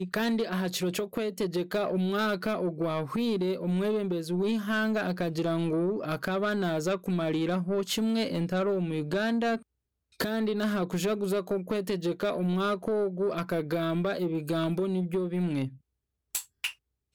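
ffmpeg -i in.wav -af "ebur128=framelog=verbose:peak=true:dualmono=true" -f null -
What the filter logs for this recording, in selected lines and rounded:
Integrated loudness:
  I:         -26.6 LUFS
  Threshold: -36.7 LUFS
Loudness range:
  LRA:         1.4 LU
  Threshold: -46.6 LUFS
  LRA low:   -27.5 LUFS
  LRA high:  -26.0 LUFS
True peak:
  Peak:      -18.4 dBFS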